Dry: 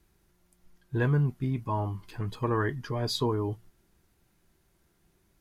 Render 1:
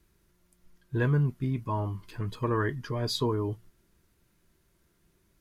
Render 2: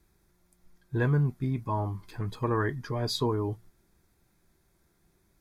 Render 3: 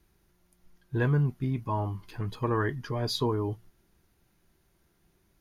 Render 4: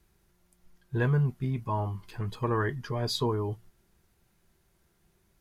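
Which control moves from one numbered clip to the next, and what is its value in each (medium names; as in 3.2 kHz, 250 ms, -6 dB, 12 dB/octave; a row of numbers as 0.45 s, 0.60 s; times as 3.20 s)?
band-stop, frequency: 780 Hz, 2.9 kHz, 7.8 kHz, 290 Hz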